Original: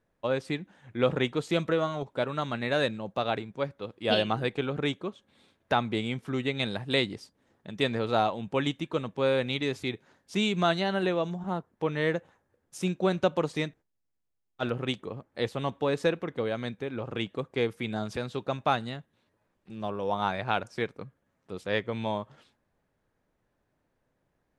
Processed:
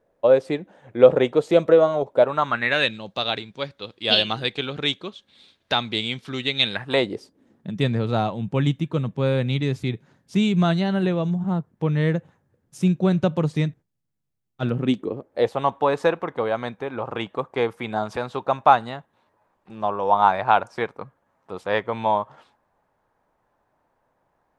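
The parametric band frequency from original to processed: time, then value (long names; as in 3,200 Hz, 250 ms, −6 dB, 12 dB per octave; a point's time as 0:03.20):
parametric band +14.5 dB 1.5 octaves
0:02.17 550 Hz
0:02.99 4,000 Hz
0:06.60 4,000 Hz
0:07.05 550 Hz
0:07.80 140 Hz
0:14.63 140 Hz
0:15.63 910 Hz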